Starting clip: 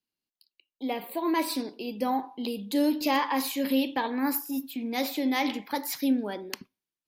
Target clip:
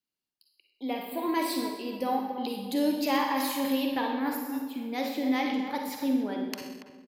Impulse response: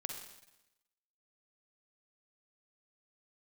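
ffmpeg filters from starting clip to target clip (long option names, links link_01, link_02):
-filter_complex "[0:a]asettb=1/sr,asplit=3[link_01][link_02][link_03];[link_01]atrim=end=4.114[link_04];[link_02]atrim=start=4.11:end=6.48,asetpts=PTS-STARTPTS,afade=type=in:duration=0.004:curve=qsin,afade=type=out:start_time=2.366:duration=0.004:curve=qsin,highshelf=frequency=4300:gain=-8.5[link_05];[link_03]atrim=start=6.476[link_06];[link_04][link_05]acrossfade=duration=0.004:curve1=hsin:curve2=qsin[link_07];[link_07][link_06]acrossfade=duration=0.004:curve1=qsin:curve2=hsin,asplit=2[link_08][link_09];[link_09]adelay=283,lowpass=frequency=1600:poles=1,volume=-8dB,asplit=2[link_10][link_11];[link_11]adelay=283,lowpass=frequency=1600:poles=1,volume=0.32,asplit=2[link_12][link_13];[link_13]adelay=283,lowpass=frequency=1600:poles=1,volume=0.32,asplit=2[link_14][link_15];[link_15]adelay=283,lowpass=frequency=1600:poles=1,volume=0.32[link_16];[link_08][link_10][link_12][link_14][link_16]amix=inputs=5:normalize=0[link_17];[1:a]atrim=start_sample=2205,afade=type=out:start_time=0.32:duration=0.01,atrim=end_sample=14553[link_18];[link_17][link_18]afir=irnorm=-1:irlink=0"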